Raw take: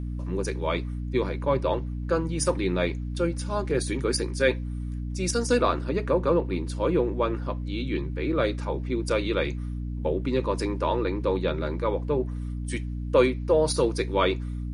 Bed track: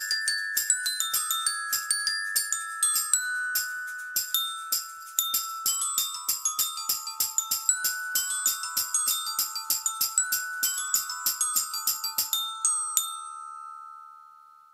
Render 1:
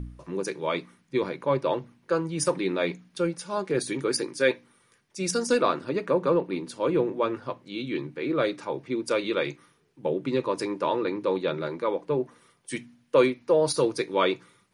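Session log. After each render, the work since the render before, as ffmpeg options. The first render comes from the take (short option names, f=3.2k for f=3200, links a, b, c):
-af "bandreject=f=60:t=h:w=4,bandreject=f=120:t=h:w=4,bandreject=f=180:t=h:w=4,bandreject=f=240:t=h:w=4,bandreject=f=300:t=h:w=4"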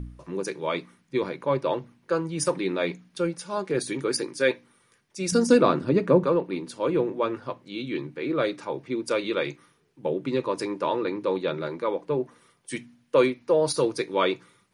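-filter_complex "[0:a]asettb=1/sr,asplit=3[a][b][c];[a]atrim=end=5.324[d];[b]atrim=start=5.32:end=6.24,asetpts=PTS-STARTPTS,afade=t=in:d=0.004:c=qsin,afade=t=out:st=0.916:d=0.004:c=qsin,equalizer=f=140:w=0.41:g=11.5[e];[c]atrim=start=6.236[f];[d][e]acrossfade=d=0.004:c1=hsin:c2=qsin[g];[g][f]acrossfade=d=0.004:c1=qsin:c2=hsin"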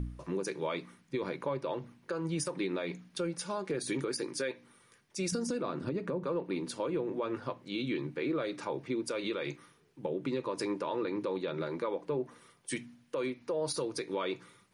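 -af "acompressor=threshold=-26dB:ratio=12,alimiter=level_in=0.5dB:limit=-24dB:level=0:latency=1:release=136,volume=-0.5dB"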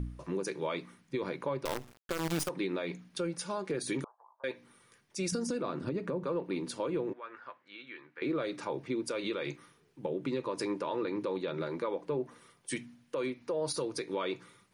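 -filter_complex "[0:a]asettb=1/sr,asplit=3[a][b][c];[a]atrim=end=1.654[d];[b]atrim=start=1.65:end=2.49,asetpts=PTS-STARTPTS,afade=t=in:d=0.004:c=qsin,afade=t=out:st=0.836:d=0.004:c=qsin,acrusher=bits=6:dc=4:mix=0:aa=0.000001[e];[c]atrim=start=2.486[f];[d][e]acrossfade=d=0.004:c1=hsin:c2=qsin[g];[g][f]acrossfade=d=0.004:c1=qsin:c2=hsin,asettb=1/sr,asplit=3[h][i][j];[h]atrim=end=4.044[k];[i]atrim=start=4.04:end=4.44,asetpts=PTS-STARTPTS,afade=t=in:d=0.004:c=qsin,afade=t=out:st=0.396:d=0.004:c=qsin,asuperpass=centerf=870:order=8:qfactor=2.1[l];[j]atrim=start=4.436[m];[k][l]acrossfade=d=0.004:c1=hsin:c2=qsin[n];[n][m]acrossfade=d=0.004:c1=qsin:c2=hsin,asettb=1/sr,asplit=3[o][p][q];[o]atrim=end=7.134[r];[p]atrim=start=7.13:end=8.22,asetpts=PTS-STARTPTS,afade=t=in:d=0.004:c=qsin,afade=t=out:st=1.086:d=0.004:c=qsin,bandpass=f=1.6k:t=q:w=2[s];[q]atrim=start=8.216[t];[r][s]acrossfade=d=0.004:c1=hsin:c2=qsin[u];[u][t]acrossfade=d=0.004:c1=qsin:c2=hsin"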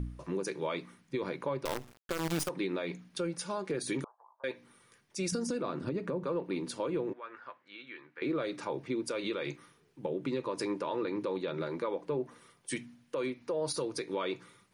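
-af anull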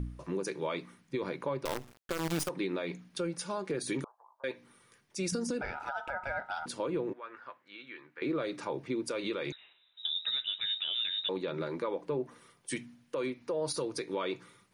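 -filter_complex "[0:a]asettb=1/sr,asplit=3[a][b][c];[a]atrim=end=5.614[d];[b]atrim=start=5.61:end=6.66,asetpts=PTS-STARTPTS,afade=t=in:d=0.004:c=qsin,afade=t=out:st=1.046:d=0.004:c=qsin,aeval=exprs='val(0)*sin(2*PI*1100*n/s)':c=same[e];[c]atrim=start=6.656[f];[d][e]acrossfade=d=0.004:c1=hsin:c2=qsin[g];[g][f]acrossfade=d=0.004:c1=qsin:c2=hsin,asettb=1/sr,asplit=3[h][i][j];[h]atrim=end=9.524[k];[i]atrim=start=9.52:end=11.29,asetpts=PTS-STARTPTS,afade=t=in:d=0.004:c=qsin,afade=t=out:st=1.766:d=0.004:c=qsin,lowpass=f=3.4k:t=q:w=0.5098,lowpass=f=3.4k:t=q:w=0.6013,lowpass=f=3.4k:t=q:w=0.9,lowpass=f=3.4k:t=q:w=2.563,afreqshift=-4000[l];[j]atrim=start=11.286[m];[k][l]acrossfade=d=0.004:c1=hsin:c2=qsin[n];[n][m]acrossfade=d=0.004:c1=qsin:c2=hsin"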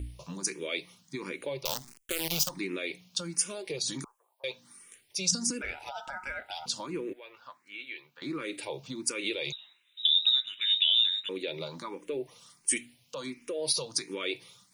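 -filter_complex "[0:a]aexciter=amount=4.1:drive=4:freq=2.2k,asplit=2[a][b];[b]afreqshift=1.4[c];[a][c]amix=inputs=2:normalize=1"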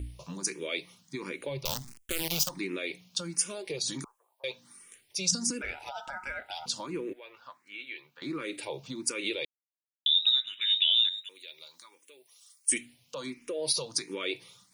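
-filter_complex "[0:a]asplit=3[a][b][c];[a]afade=t=out:st=1.47:d=0.02[d];[b]asubboost=boost=5:cutoff=220,afade=t=in:st=1.47:d=0.02,afade=t=out:st=2.22:d=0.02[e];[c]afade=t=in:st=2.22:d=0.02[f];[d][e][f]amix=inputs=3:normalize=0,asettb=1/sr,asplit=3[g][h][i];[g]atrim=end=11.094[j];[h]atrim=start=11.09:end=12.72,asetpts=PTS-STARTPTS,afade=t=in:d=0.004:c=qsin,afade=t=out:st=1.626:d=0.004:c=qsin,aderivative[k];[i]atrim=start=12.716[l];[j][k]acrossfade=d=0.004:c1=hsin:c2=qsin[m];[m][l]acrossfade=d=0.004:c1=qsin:c2=hsin,asplit=3[n][o][p];[n]atrim=end=9.45,asetpts=PTS-STARTPTS,afade=t=out:st=9.446:d=0.004:c=hsin[q];[o]atrim=start=9.45:end=10.06,asetpts=PTS-STARTPTS,volume=0[r];[p]atrim=start=10.06,asetpts=PTS-STARTPTS,afade=t=in:d=0.004:c=hsin[s];[q][r][s]concat=n=3:v=0:a=1"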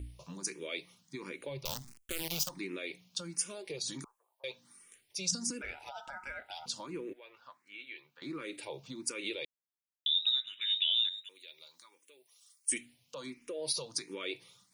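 -af "volume=-5.5dB"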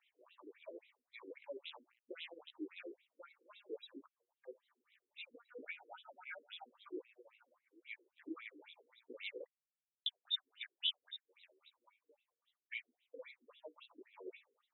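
-af "flanger=delay=16:depth=2.3:speed=0.43,afftfilt=real='re*between(b*sr/1024,340*pow(2900/340,0.5+0.5*sin(2*PI*3.7*pts/sr))/1.41,340*pow(2900/340,0.5+0.5*sin(2*PI*3.7*pts/sr))*1.41)':imag='im*between(b*sr/1024,340*pow(2900/340,0.5+0.5*sin(2*PI*3.7*pts/sr))/1.41,340*pow(2900/340,0.5+0.5*sin(2*PI*3.7*pts/sr))*1.41)':win_size=1024:overlap=0.75"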